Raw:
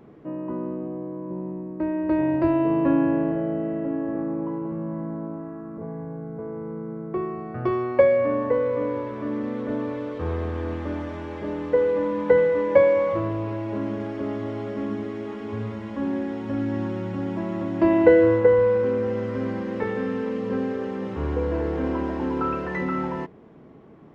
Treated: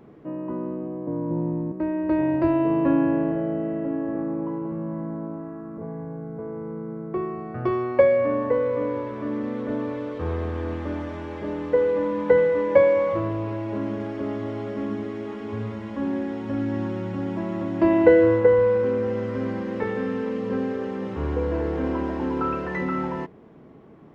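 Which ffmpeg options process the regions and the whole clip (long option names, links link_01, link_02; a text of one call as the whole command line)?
ffmpeg -i in.wav -filter_complex "[0:a]asettb=1/sr,asplit=3[link_01][link_02][link_03];[link_01]atrim=end=1.074[link_04];[link_02]atrim=start=1.07:end=1.72,asetpts=PTS-STARTPTS,afade=type=in:duration=0.004:curve=qsin,afade=type=out:start_time=0.646:duration=0.004:curve=qsin,highshelf=frequency=3300:gain=-10.5,acontrast=52,afreqshift=-21[link_05];[link_03]atrim=start=1.716[link_06];[link_04][link_05]acrossfade=duration=0.004:curve1=hsin:curve2=qsin[link_07];[link_07][link_06]acrossfade=duration=0.004:curve1=qsin:curve2=hsin" out.wav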